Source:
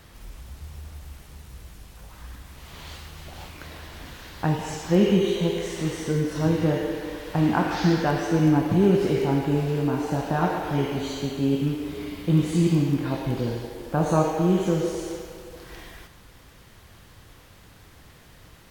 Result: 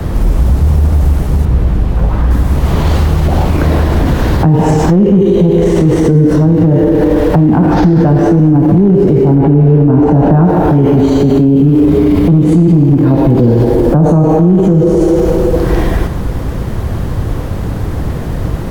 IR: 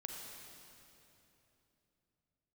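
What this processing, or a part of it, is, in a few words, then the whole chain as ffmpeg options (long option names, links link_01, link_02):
mastering chain: -filter_complex "[0:a]equalizer=frequency=2900:width_type=o:width=1.8:gain=-3,acrossover=split=120|260[link_01][link_02][link_03];[link_01]acompressor=threshold=-42dB:ratio=4[link_04];[link_02]acompressor=threshold=-24dB:ratio=4[link_05];[link_03]acompressor=threshold=-30dB:ratio=4[link_06];[link_04][link_05][link_06]amix=inputs=3:normalize=0,acompressor=threshold=-35dB:ratio=1.5,asoftclip=type=tanh:threshold=-21.5dB,tiltshelf=frequency=1100:gain=9.5,asoftclip=type=hard:threshold=-16dB,alimiter=level_in=27.5dB:limit=-1dB:release=50:level=0:latency=1,asettb=1/sr,asplit=3[link_07][link_08][link_09];[link_07]atrim=end=1.454[link_10];[link_08]atrim=start=1.45:end=2.31,asetpts=PTS-STARTPTS,afade=type=in:duration=0.004:curve=qsin,afade=type=out:start_time=0.856:duration=0.004:curve=qsin,acrossover=split=4200[link_11][link_12];[link_12]acompressor=threshold=-48dB:ratio=4:attack=1:release=60[link_13];[link_11][link_13]amix=inputs=2:normalize=0[link_14];[link_09]atrim=start=2.306[link_15];[link_10][link_14]acrossfade=duration=0.004:curve1=hsin:curve2=qsin[link_16];[link_16][link_15]acrossfade=duration=0.004:curve1=qsin:curve2=hsin,asettb=1/sr,asplit=3[link_17][link_18][link_19];[link_17]atrim=end=9.354[link_20];[link_18]atrim=start=9.35:end=10.45,asetpts=PTS-STARTPTS,afade=type=in:duration=0.004:curve=qsin,afade=type=out:start_time=1.096:duration=0.004:curve=qsin,bass=frequency=250:gain=1,treble=frequency=4000:gain=-13[link_21];[link_19]atrim=start=10.446[link_22];[link_20][link_21]acrossfade=duration=0.004:curve1=hsin:curve2=qsin[link_23];[link_23][link_22]acrossfade=duration=0.004:curve1=qsin:curve2=hsin,volume=-1dB"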